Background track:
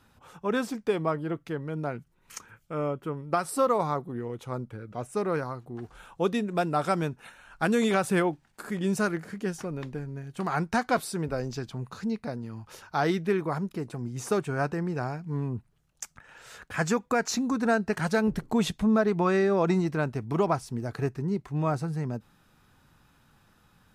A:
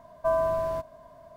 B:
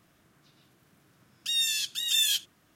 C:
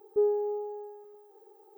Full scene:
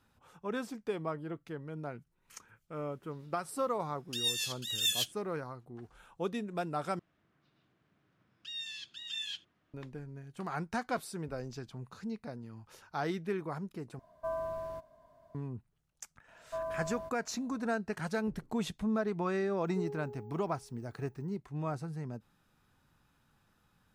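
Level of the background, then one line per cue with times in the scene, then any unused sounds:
background track -9 dB
2.67 s: add B -4 dB, fades 0.10 s + rotary cabinet horn 6.7 Hz
6.99 s: replace with B -9.5 dB + low-pass 3.2 kHz
13.99 s: replace with A -11.5 dB
16.28 s: add A -13 dB
19.60 s: add C -14.5 dB

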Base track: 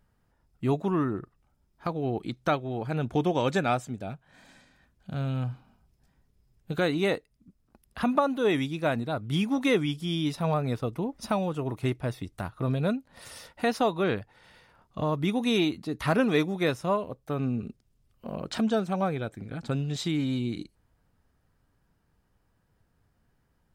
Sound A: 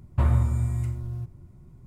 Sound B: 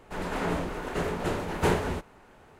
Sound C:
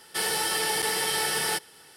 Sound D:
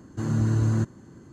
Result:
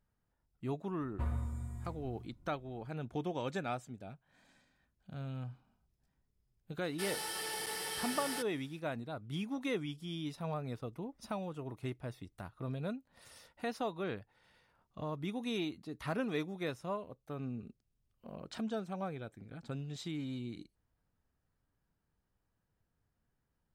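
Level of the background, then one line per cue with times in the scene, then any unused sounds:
base track -12 dB
1.01 s: add A -14 dB + comb 4.1 ms, depth 49%
6.84 s: add C -16 dB + waveshaping leveller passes 1
not used: B, D

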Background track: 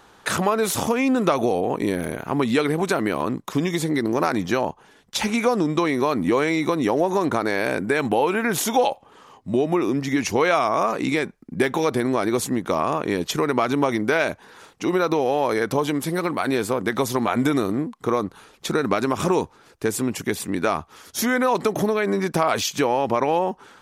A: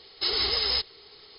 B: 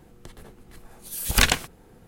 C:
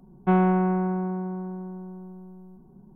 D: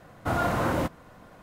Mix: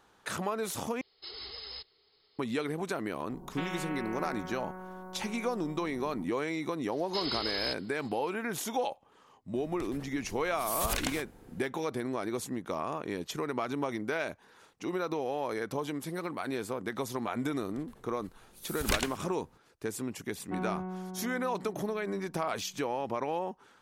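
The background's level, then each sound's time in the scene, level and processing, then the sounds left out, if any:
background track -12.5 dB
1.01 s: replace with A -17.5 dB
3.30 s: add C -16.5 dB + spectrum-flattening compressor 4:1
6.92 s: add A -9 dB
9.55 s: add B -2.5 dB + compression 8:1, threshold -25 dBFS
17.51 s: add B -12 dB
20.24 s: add C -15.5 dB
not used: D

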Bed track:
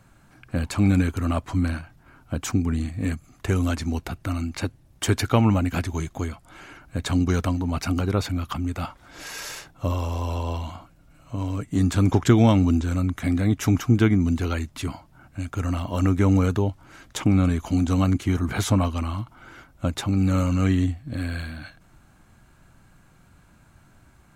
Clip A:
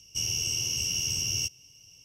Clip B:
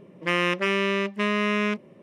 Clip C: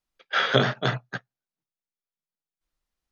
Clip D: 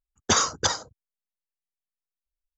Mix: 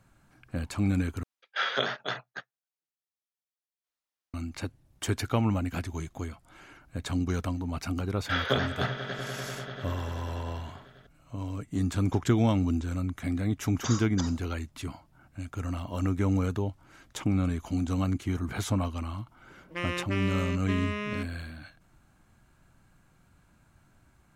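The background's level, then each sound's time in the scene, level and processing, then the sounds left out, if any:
bed track -7.5 dB
1.23 s: replace with C -5 dB + high-pass 640 Hz 6 dB/octave
7.96 s: add C -6.5 dB + echo with a slow build-up 98 ms, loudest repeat 5, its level -15 dB
13.54 s: add D -14.5 dB
19.49 s: add B -10 dB
not used: A

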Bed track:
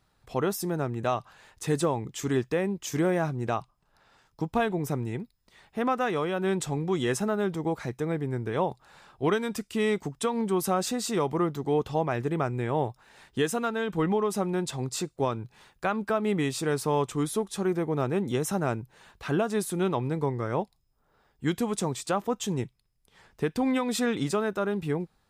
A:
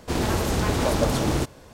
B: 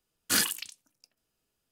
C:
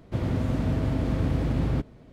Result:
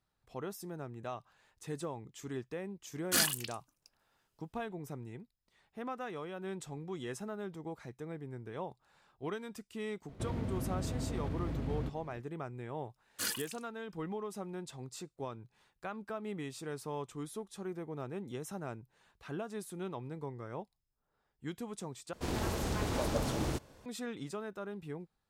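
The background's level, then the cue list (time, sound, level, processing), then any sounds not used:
bed track -14 dB
2.82 s: add B -3.5 dB
10.08 s: add C -3.5 dB + compression 3:1, threshold -32 dBFS
12.89 s: add B -11.5 dB + phaser 1.2 Hz, delay 2.3 ms, feedback 40%
22.13 s: replace with A -11 dB

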